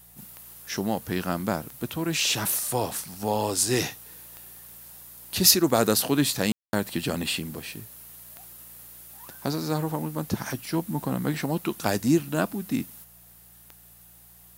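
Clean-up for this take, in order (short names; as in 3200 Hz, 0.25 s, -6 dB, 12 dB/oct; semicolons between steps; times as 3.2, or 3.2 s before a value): de-click; de-hum 58.4 Hz, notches 3; room tone fill 6.52–6.73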